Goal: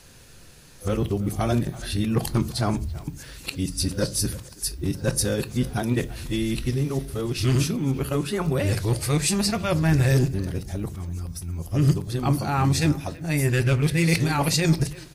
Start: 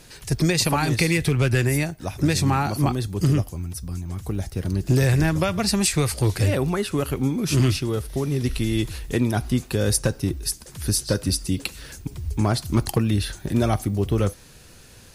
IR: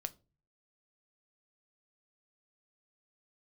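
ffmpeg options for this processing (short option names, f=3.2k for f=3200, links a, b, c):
-filter_complex "[0:a]areverse,asplit=2[a][b];[b]adelay=330,highpass=300,lowpass=3.4k,asoftclip=type=hard:threshold=-17.5dB,volume=-18dB[c];[a][c]amix=inputs=2:normalize=0[d];[1:a]atrim=start_sample=2205[e];[d][e]afir=irnorm=-1:irlink=0"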